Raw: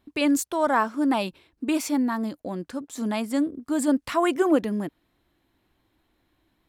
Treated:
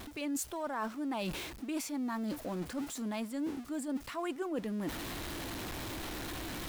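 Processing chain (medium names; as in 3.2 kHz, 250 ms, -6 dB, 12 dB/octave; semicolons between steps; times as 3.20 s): jump at every zero crossing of -34.5 dBFS; reverse; compression 6:1, threshold -35 dBFS, peak gain reduction 18.5 dB; reverse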